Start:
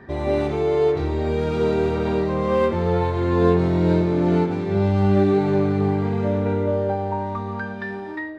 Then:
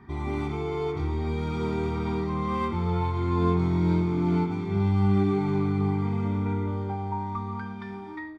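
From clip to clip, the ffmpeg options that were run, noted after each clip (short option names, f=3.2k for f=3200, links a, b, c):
-af "aecho=1:1:0.9:0.98,volume=-8.5dB"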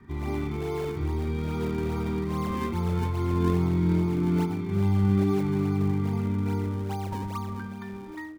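-filter_complex "[0:a]highshelf=f=4.1k:g=-8.5,acrossover=split=220|550|990[a][b][c][d];[c]acrusher=samples=38:mix=1:aa=0.000001:lfo=1:lforange=60.8:lforate=2.4[e];[a][b][e][d]amix=inputs=4:normalize=0"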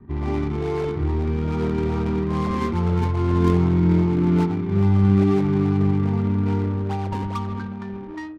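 -af "adynamicsmooth=sensitivity=7.5:basefreq=620,volume=6dB"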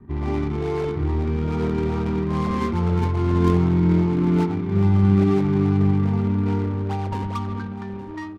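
-af "aecho=1:1:866:0.141"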